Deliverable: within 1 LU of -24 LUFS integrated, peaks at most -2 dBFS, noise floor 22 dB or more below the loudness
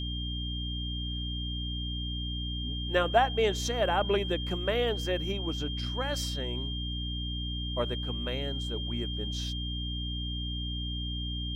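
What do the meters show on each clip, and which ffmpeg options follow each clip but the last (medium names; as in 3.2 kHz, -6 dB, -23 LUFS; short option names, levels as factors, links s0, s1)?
hum 60 Hz; highest harmonic 300 Hz; hum level -33 dBFS; steady tone 3.2 kHz; tone level -37 dBFS; loudness -31.5 LUFS; peak level -10.5 dBFS; loudness target -24.0 LUFS
-> -af "bandreject=f=60:t=h:w=4,bandreject=f=120:t=h:w=4,bandreject=f=180:t=h:w=4,bandreject=f=240:t=h:w=4,bandreject=f=300:t=h:w=4"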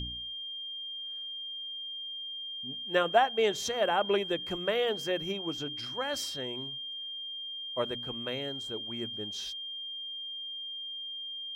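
hum not found; steady tone 3.2 kHz; tone level -37 dBFS
-> -af "bandreject=f=3200:w=30"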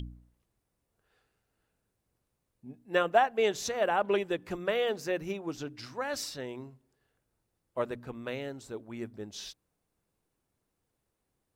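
steady tone not found; loudness -32.0 LUFS; peak level -11.0 dBFS; loudness target -24.0 LUFS
-> -af "volume=2.51"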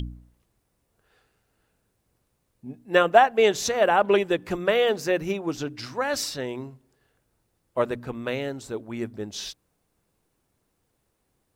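loudness -24.5 LUFS; peak level -3.0 dBFS; noise floor -74 dBFS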